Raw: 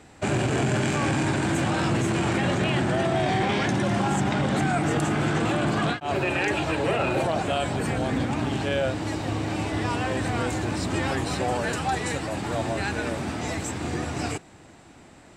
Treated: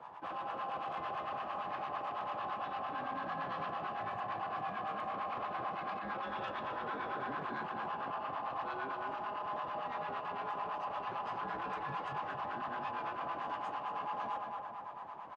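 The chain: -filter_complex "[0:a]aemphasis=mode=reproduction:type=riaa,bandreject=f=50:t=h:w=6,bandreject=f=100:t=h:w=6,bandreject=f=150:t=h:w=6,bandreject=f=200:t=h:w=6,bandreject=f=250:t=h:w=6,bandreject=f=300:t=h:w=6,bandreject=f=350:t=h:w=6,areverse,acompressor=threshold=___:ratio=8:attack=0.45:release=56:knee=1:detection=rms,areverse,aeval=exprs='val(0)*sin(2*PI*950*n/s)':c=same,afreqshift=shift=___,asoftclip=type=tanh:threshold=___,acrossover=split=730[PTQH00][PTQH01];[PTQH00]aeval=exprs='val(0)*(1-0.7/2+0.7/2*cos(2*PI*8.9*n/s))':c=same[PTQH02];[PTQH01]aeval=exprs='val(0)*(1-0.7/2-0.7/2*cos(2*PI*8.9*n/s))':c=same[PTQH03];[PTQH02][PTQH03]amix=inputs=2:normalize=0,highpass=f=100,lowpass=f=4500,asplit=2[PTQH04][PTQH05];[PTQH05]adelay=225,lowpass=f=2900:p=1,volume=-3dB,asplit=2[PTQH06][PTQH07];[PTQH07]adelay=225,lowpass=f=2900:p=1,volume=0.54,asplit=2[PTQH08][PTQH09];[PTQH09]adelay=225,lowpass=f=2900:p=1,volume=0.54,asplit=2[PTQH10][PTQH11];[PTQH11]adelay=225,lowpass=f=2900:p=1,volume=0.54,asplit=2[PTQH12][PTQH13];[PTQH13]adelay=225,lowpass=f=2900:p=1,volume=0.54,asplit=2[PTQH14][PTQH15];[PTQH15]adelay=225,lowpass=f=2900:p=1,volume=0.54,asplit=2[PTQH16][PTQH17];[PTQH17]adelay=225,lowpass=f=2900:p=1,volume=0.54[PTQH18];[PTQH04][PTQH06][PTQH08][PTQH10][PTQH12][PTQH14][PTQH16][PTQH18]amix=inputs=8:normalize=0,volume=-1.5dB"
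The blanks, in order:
-27dB, -25, -30dB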